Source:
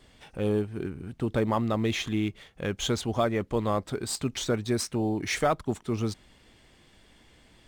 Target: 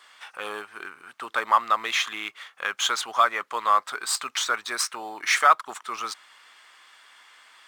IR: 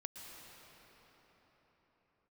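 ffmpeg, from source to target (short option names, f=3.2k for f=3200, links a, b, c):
-af "highpass=f=1.2k:t=q:w=2.9,volume=6dB"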